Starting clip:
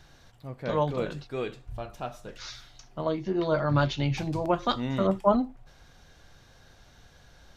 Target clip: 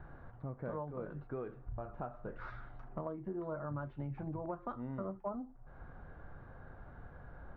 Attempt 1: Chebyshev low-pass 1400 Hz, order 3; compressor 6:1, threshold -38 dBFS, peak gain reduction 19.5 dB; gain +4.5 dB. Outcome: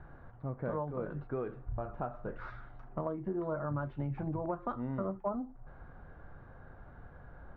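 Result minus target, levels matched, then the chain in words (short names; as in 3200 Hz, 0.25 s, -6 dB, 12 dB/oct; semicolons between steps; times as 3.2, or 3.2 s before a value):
compressor: peak gain reduction -5 dB
Chebyshev low-pass 1400 Hz, order 3; compressor 6:1, threshold -44 dBFS, peak gain reduction 24.5 dB; gain +4.5 dB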